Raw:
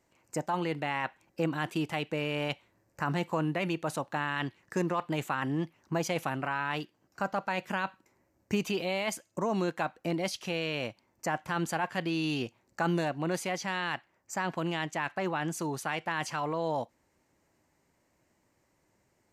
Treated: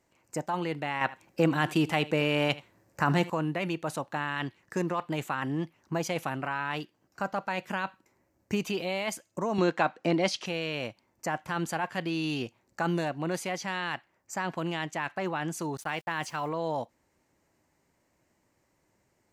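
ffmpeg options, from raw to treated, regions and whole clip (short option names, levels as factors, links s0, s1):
-filter_complex "[0:a]asettb=1/sr,asplit=3[s0][s1][s2];[s0]atrim=end=1.014[s3];[s1]atrim=start=1.01:end=3.3,asetpts=PTS-STARTPTS,afade=t=in:d=0.004:c=qsin,afade=t=out:st=2.286:d=0.004:c=qsin,highpass=60,aecho=1:1:78:0.112,atrim=end_sample=100989,acontrast=47[s4];[s2]atrim=start=3.296[s5];[s3][s4]acrossfade=d=0.004:c1=hsin:c2=qsin[s6];[s6][s5]acrossfade=d=0.004:c1=qsin:c2=hsin,asettb=1/sr,asplit=3[s7][s8][s9];[s7]atrim=end=9.584[s10];[s8]atrim=start=9.58:end=10.46,asetpts=PTS-STARTPTS,afade=t=in:d=0.004:c=qsin,afade=t=out:st=0.876:d=0.004:c=qsin,acontrast=53,highpass=160,lowpass=6000[s11];[s9]atrim=start=10.456[s12];[s10][s11]acrossfade=d=0.004:c1=hsin:c2=qsin[s13];[s13][s12]acrossfade=d=0.004:c1=qsin:c2=hsin,asettb=1/sr,asplit=3[s14][s15][s16];[s14]atrim=end=15.774[s17];[s15]atrim=start=15.77:end=16.49,asetpts=PTS-STARTPTS,afade=t=in:d=0.004:c=qsin,afade=t=out:st=0.716:d=0.004:c=qsin,agate=range=0.0224:threshold=0.0126:ratio=3:release=100:detection=peak,aeval=exprs='val(0)*gte(abs(val(0)),0.00251)':c=same[s18];[s16]atrim=start=16.486[s19];[s17][s18]acrossfade=d=0.004:c1=hsin:c2=qsin[s20];[s20][s19]acrossfade=d=0.004:c1=qsin:c2=hsin"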